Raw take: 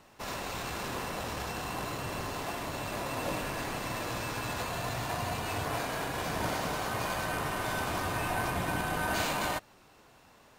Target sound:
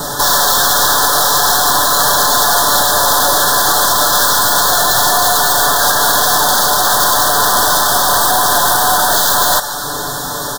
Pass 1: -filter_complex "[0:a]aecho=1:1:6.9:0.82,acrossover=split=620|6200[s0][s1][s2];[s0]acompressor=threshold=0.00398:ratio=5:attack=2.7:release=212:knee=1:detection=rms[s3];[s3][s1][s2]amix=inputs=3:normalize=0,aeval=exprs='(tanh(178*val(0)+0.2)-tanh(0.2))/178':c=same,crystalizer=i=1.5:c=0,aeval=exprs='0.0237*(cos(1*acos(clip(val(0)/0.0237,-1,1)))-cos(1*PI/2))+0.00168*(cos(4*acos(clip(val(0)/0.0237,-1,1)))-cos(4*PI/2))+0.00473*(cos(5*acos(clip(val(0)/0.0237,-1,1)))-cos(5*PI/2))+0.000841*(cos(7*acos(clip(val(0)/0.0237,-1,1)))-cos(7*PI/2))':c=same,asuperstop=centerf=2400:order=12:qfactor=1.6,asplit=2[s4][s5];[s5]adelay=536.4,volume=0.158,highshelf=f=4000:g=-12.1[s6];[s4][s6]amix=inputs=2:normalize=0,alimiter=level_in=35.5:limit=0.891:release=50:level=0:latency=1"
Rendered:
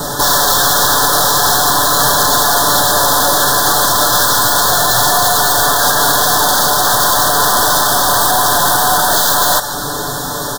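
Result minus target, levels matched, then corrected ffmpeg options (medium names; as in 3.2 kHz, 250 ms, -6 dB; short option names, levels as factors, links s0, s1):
compression: peak gain reduction -9 dB
-filter_complex "[0:a]aecho=1:1:6.9:0.82,acrossover=split=620|6200[s0][s1][s2];[s0]acompressor=threshold=0.00112:ratio=5:attack=2.7:release=212:knee=1:detection=rms[s3];[s3][s1][s2]amix=inputs=3:normalize=0,aeval=exprs='(tanh(178*val(0)+0.2)-tanh(0.2))/178':c=same,crystalizer=i=1.5:c=0,aeval=exprs='0.0237*(cos(1*acos(clip(val(0)/0.0237,-1,1)))-cos(1*PI/2))+0.00168*(cos(4*acos(clip(val(0)/0.0237,-1,1)))-cos(4*PI/2))+0.00473*(cos(5*acos(clip(val(0)/0.0237,-1,1)))-cos(5*PI/2))+0.000841*(cos(7*acos(clip(val(0)/0.0237,-1,1)))-cos(7*PI/2))':c=same,asuperstop=centerf=2400:order=12:qfactor=1.6,asplit=2[s4][s5];[s5]adelay=536.4,volume=0.158,highshelf=f=4000:g=-12.1[s6];[s4][s6]amix=inputs=2:normalize=0,alimiter=level_in=35.5:limit=0.891:release=50:level=0:latency=1"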